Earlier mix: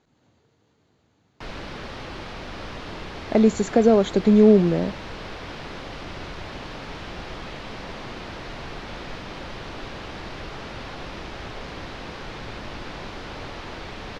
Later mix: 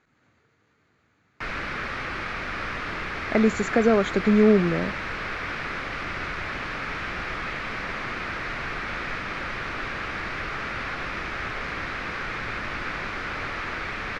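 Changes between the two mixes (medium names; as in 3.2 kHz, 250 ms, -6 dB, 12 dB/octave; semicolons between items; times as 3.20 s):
speech -3.5 dB; master: add high-order bell 1.7 kHz +10.5 dB 1.3 oct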